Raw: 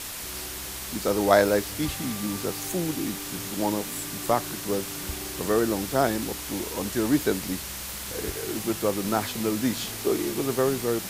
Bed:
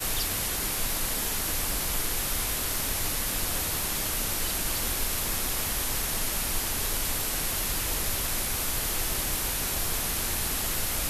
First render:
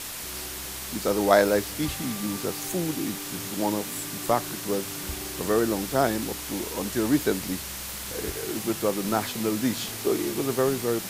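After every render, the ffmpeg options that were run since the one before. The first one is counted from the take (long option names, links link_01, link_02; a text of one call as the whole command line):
ffmpeg -i in.wav -af "bandreject=frequency=50:width_type=h:width=4,bandreject=frequency=100:width_type=h:width=4" out.wav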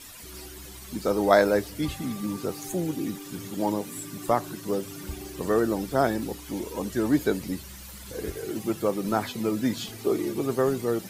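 ffmpeg -i in.wav -af "afftdn=noise_reduction=13:noise_floor=-36" out.wav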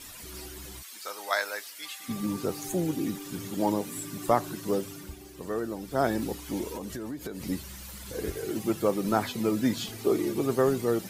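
ffmpeg -i in.wav -filter_complex "[0:a]asplit=3[link_01][link_02][link_03];[link_01]afade=type=out:start_time=0.81:duration=0.02[link_04];[link_02]highpass=1400,afade=type=in:start_time=0.81:duration=0.02,afade=type=out:start_time=2.08:duration=0.02[link_05];[link_03]afade=type=in:start_time=2.08:duration=0.02[link_06];[link_04][link_05][link_06]amix=inputs=3:normalize=0,asettb=1/sr,asplit=3[link_07][link_08][link_09];[link_07]atrim=end=6.764[link_10];[link_08]atrim=start=6.76:end=7.44,asetpts=PTS-STARTPTS,afade=type=in:duration=0.004:curve=qsin,afade=type=out:start_time=0.676:duration=0.004:curve=qsin,acompressor=threshold=-32dB:ratio=20:attack=3.2:release=140:knee=1:detection=peak[link_11];[link_09]atrim=start=7.436[link_12];[link_10][link_11]acrossfade=duration=0.004:curve1=hsin:curve2=qsin[link_13];[link_13][link_12]acrossfade=duration=0.004:curve1=qsin:curve2=hsin,asplit=3[link_14][link_15][link_16];[link_14]atrim=end=5.16,asetpts=PTS-STARTPTS,afade=type=out:start_time=4.77:duration=0.39:silence=0.375837[link_17];[link_15]atrim=start=5.16:end=5.81,asetpts=PTS-STARTPTS,volume=-8.5dB[link_18];[link_16]atrim=start=5.81,asetpts=PTS-STARTPTS,afade=type=in:duration=0.39:silence=0.375837[link_19];[link_17][link_18][link_19]concat=n=3:v=0:a=1" out.wav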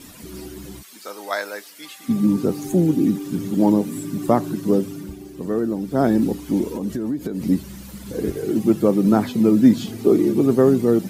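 ffmpeg -i in.wav -af "equalizer=frequency=220:width=0.59:gain=14.5" out.wav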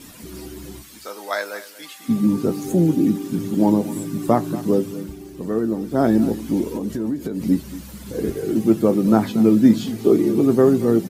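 ffmpeg -i in.wav -filter_complex "[0:a]asplit=2[link_01][link_02];[link_02]adelay=18,volume=-12.5dB[link_03];[link_01][link_03]amix=inputs=2:normalize=0,aecho=1:1:232:0.15" out.wav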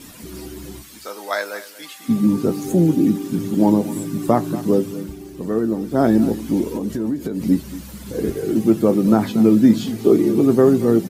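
ffmpeg -i in.wav -af "volume=1.5dB,alimiter=limit=-3dB:level=0:latency=1" out.wav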